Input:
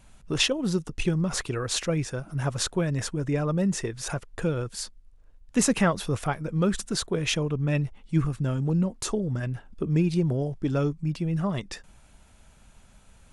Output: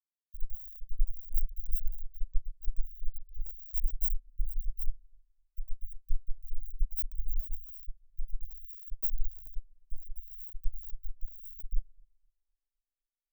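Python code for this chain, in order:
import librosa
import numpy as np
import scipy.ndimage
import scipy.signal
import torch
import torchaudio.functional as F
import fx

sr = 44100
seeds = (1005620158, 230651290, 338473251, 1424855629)

p1 = fx.env_flanger(x, sr, rest_ms=11.9, full_db=-24.5)
p2 = fx.dereverb_blind(p1, sr, rt60_s=0.78)
p3 = p2 + 0.91 * np.pad(p2, (int(6.6 * sr / 1000.0), 0))[:len(p2)]
p4 = fx.rider(p3, sr, range_db=3, speed_s=0.5)
p5 = fx.auto_swell(p4, sr, attack_ms=567.0)
p6 = fx.small_body(p5, sr, hz=(260.0, 460.0), ring_ms=25, db=13)
p7 = fx.schmitt(p6, sr, flips_db=-30.5)
p8 = scipy.signal.sosfilt(scipy.signal.cheby2(4, 80, [180.0, 7400.0], 'bandstop', fs=sr, output='sos'), p7)
p9 = p8 + fx.echo_filtered(p8, sr, ms=255, feedback_pct=70, hz=2000.0, wet_db=-21, dry=0)
p10 = fx.band_widen(p9, sr, depth_pct=100)
y = p10 * 10.0 ** (6.5 / 20.0)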